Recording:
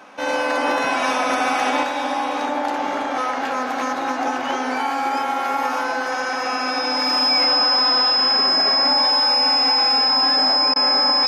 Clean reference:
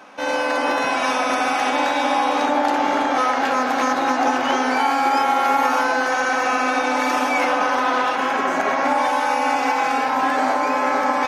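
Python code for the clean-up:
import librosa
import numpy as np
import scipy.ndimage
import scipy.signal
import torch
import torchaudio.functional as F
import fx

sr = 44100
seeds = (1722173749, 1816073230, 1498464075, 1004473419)

y = fx.notch(x, sr, hz=5100.0, q=30.0)
y = fx.fix_interpolate(y, sr, at_s=(10.74,), length_ms=18.0)
y = fx.fix_echo_inverse(y, sr, delay_ms=430, level_db=-15.0)
y = fx.fix_level(y, sr, at_s=1.83, step_db=4.0)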